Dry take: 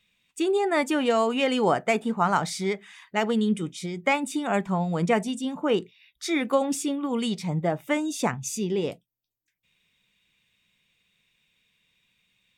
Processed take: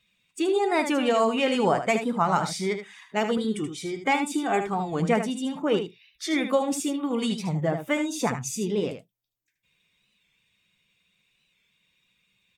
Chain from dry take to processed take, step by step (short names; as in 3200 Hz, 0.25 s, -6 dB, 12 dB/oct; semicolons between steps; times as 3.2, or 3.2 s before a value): bin magnitudes rounded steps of 15 dB; 3.37–5 comb 2.6 ms, depth 52%; on a send: echo 76 ms -8.5 dB; on the sum: record warp 45 rpm, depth 100 cents